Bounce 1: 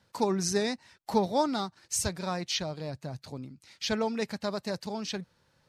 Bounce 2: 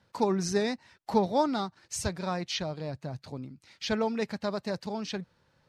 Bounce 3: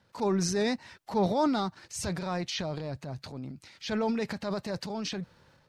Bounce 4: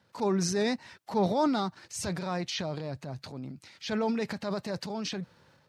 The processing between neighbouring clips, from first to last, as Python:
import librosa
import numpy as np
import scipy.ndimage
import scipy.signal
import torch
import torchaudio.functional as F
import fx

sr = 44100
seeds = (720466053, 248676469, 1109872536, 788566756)

y1 = fx.lowpass(x, sr, hz=3700.0, slope=6)
y1 = F.gain(torch.from_numpy(y1), 1.0).numpy()
y2 = fx.transient(y1, sr, attack_db=-6, sustain_db=8)
y3 = scipy.signal.sosfilt(scipy.signal.butter(2, 86.0, 'highpass', fs=sr, output='sos'), y2)